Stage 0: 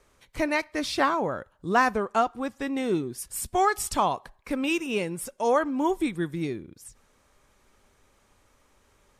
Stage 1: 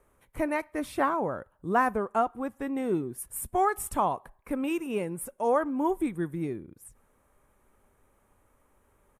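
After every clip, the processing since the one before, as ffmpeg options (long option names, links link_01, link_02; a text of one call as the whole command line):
ffmpeg -i in.wav -af "firequalizer=gain_entry='entry(930,0);entry(4700,-18);entry(10000,2)':delay=0.05:min_phase=1,volume=-2dB" out.wav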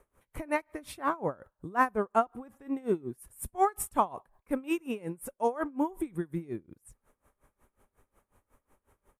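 ffmpeg -i in.wav -af "aeval=exprs='val(0)*pow(10,-23*(0.5-0.5*cos(2*PI*5.5*n/s))/20)':channel_layout=same,volume=2.5dB" out.wav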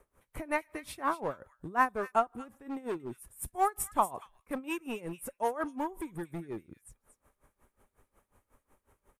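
ffmpeg -i in.wav -filter_complex "[0:a]acrossover=split=580|1600[link_01][link_02][link_03];[link_01]volume=35.5dB,asoftclip=hard,volume=-35.5dB[link_04];[link_03]aecho=1:1:232:0.335[link_05];[link_04][link_02][link_05]amix=inputs=3:normalize=0" out.wav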